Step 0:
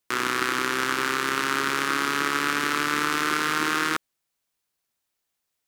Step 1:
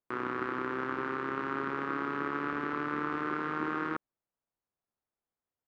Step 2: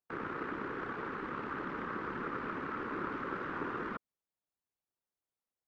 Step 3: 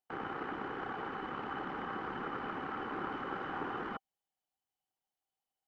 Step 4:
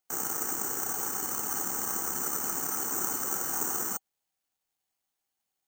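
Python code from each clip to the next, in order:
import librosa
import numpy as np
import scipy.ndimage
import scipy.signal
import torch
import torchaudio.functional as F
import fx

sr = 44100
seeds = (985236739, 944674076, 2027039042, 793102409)

y1 = scipy.signal.sosfilt(scipy.signal.butter(2, 1100.0, 'lowpass', fs=sr, output='sos'), x)
y1 = y1 * librosa.db_to_amplitude(-4.5)
y2 = fx.whisperise(y1, sr, seeds[0])
y2 = y2 * librosa.db_to_amplitude(-5.0)
y3 = fx.small_body(y2, sr, hz=(780.0, 3000.0), ring_ms=45, db=16)
y3 = y3 * librosa.db_to_amplitude(-2.0)
y4 = (np.kron(y3[::6], np.eye(6)[0]) * 6)[:len(y3)]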